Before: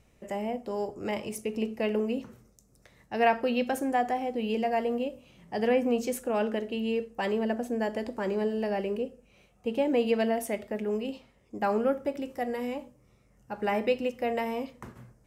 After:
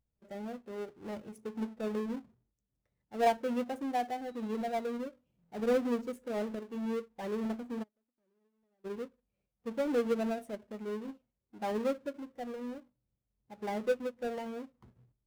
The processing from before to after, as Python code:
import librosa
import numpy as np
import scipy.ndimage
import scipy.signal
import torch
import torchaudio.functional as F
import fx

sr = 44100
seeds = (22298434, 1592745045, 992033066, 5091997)

y = fx.halfwave_hold(x, sr)
y = fx.dmg_tone(y, sr, hz=3900.0, level_db=-48.0, at=(4.25, 4.97), fade=0.02)
y = fx.gate_flip(y, sr, shuts_db=-28.0, range_db=-27, at=(7.82, 8.84), fade=0.02)
y = fx.spectral_expand(y, sr, expansion=1.5)
y = F.gain(torch.from_numpy(y), -6.0).numpy()